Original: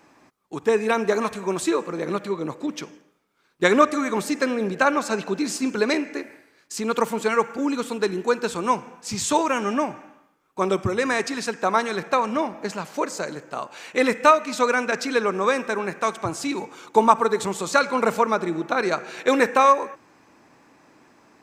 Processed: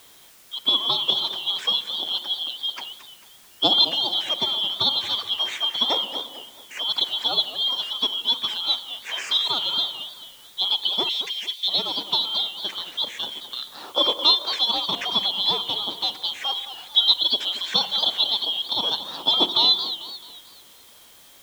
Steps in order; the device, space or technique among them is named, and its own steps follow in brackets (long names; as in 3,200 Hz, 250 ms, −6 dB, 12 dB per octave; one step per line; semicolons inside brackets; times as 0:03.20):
split-band scrambled radio (band-splitting scrambler in four parts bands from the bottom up 2413; band-pass filter 350–3,100 Hz; white noise bed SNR 26 dB)
0:11.09–0:11.68: inverse Chebyshev high-pass filter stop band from 390 Hz, stop band 80 dB
feedback echo with a swinging delay time 220 ms, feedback 42%, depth 203 cents, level −12 dB
level +2.5 dB